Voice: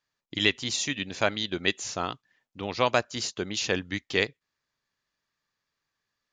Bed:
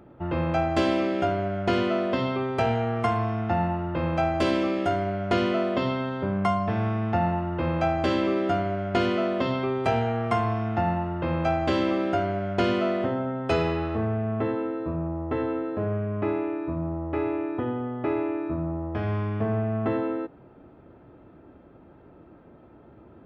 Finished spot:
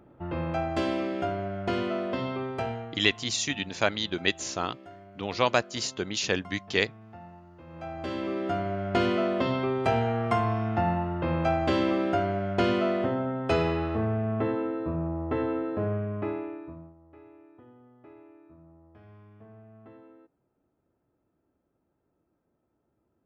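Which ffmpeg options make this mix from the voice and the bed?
ffmpeg -i stem1.wav -i stem2.wav -filter_complex "[0:a]adelay=2600,volume=0dB[link_01];[1:a]volume=16.5dB,afade=type=out:start_time=2.47:duration=0.57:silence=0.133352,afade=type=in:start_time=7.67:duration=1.34:silence=0.0841395,afade=type=out:start_time=15.84:duration=1.1:silence=0.0630957[link_02];[link_01][link_02]amix=inputs=2:normalize=0" out.wav

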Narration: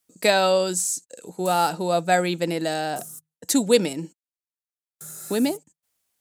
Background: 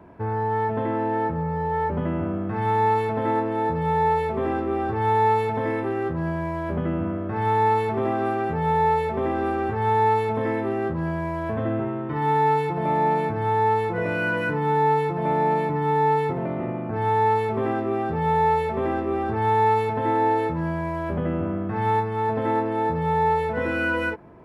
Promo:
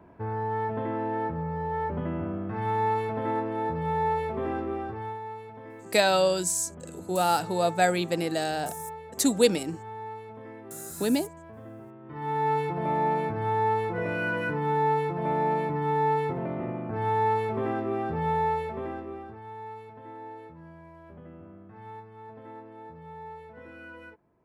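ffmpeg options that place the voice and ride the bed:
ffmpeg -i stem1.wav -i stem2.wav -filter_complex "[0:a]adelay=5700,volume=-3dB[link_01];[1:a]volume=9dB,afade=type=out:start_time=4.63:duration=0.57:silence=0.211349,afade=type=in:start_time=12:duration=0.58:silence=0.188365,afade=type=out:start_time=18.2:duration=1.22:silence=0.141254[link_02];[link_01][link_02]amix=inputs=2:normalize=0" out.wav

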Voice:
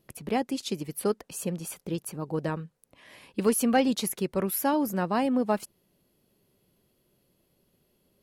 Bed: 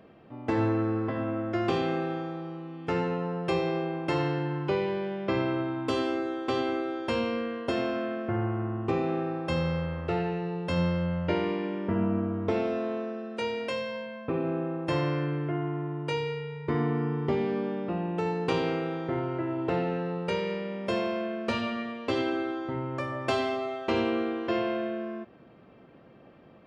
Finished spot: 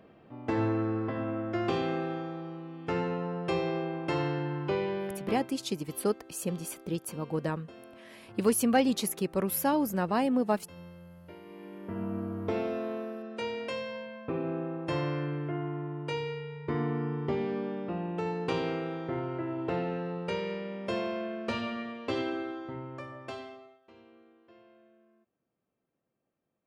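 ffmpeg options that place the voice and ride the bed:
ffmpeg -i stem1.wav -i stem2.wav -filter_complex "[0:a]adelay=5000,volume=-1.5dB[link_01];[1:a]volume=15.5dB,afade=type=out:start_time=5.05:duration=0.43:silence=0.112202,afade=type=in:start_time=11.44:duration=1.1:silence=0.125893,afade=type=out:start_time=22.16:duration=1.64:silence=0.0473151[link_02];[link_01][link_02]amix=inputs=2:normalize=0" out.wav

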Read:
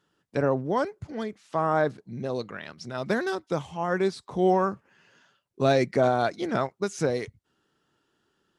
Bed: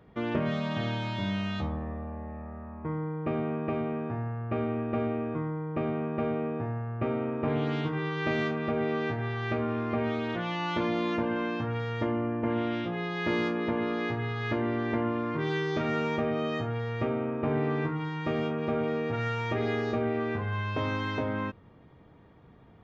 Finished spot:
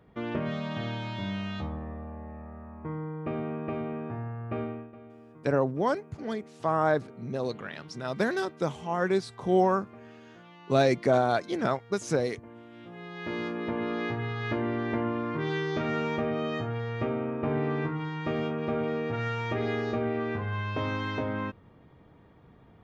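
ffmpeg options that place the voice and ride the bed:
ffmpeg -i stem1.wav -i stem2.wav -filter_complex "[0:a]adelay=5100,volume=-1dB[link_01];[1:a]volume=16.5dB,afade=type=out:start_time=4.6:duration=0.32:silence=0.141254,afade=type=in:start_time=12.71:duration=1.27:silence=0.112202[link_02];[link_01][link_02]amix=inputs=2:normalize=0" out.wav

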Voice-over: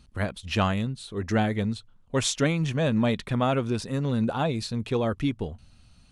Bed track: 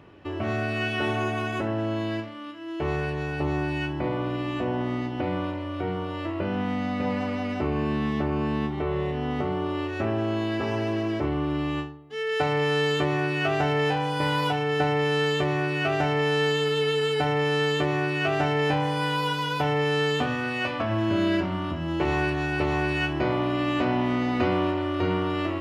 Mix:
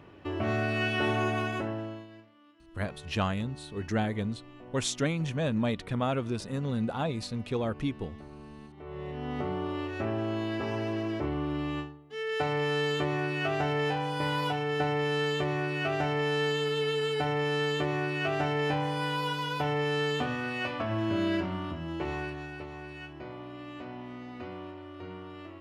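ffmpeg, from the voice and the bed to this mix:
ffmpeg -i stem1.wav -i stem2.wav -filter_complex "[0:a]adelay=2600,volume=-5dB[link_01];[1:a]volume=14.5dB,afade=type=out:start_time=1.38:duration=0.69:silence=0.105925,afade=type=in:start_time=8.76:duration=0.67:silence=0.158489,afade=type=out:start_time=21.49:duration=1.2:silence=0.237137[link_02];[link_01][link_02]amix=inputs=2:normalize=0" out.wav

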